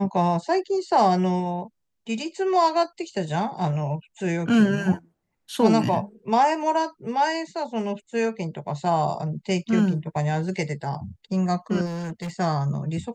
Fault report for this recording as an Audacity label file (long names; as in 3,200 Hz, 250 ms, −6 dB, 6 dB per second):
11.850000	12.300000	clipping −28 dBFS